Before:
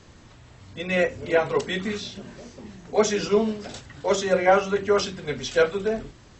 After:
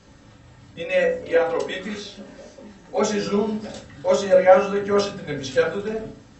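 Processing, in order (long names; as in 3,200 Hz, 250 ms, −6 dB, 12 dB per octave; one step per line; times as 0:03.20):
0:00.80–0:03.00: parametric band 140 Hz −12.5 dB 0.79 octaves
convolution reverb RT60 0.45 s, pre-delay 3 ms, DRR −0.5 dB
level −3 dB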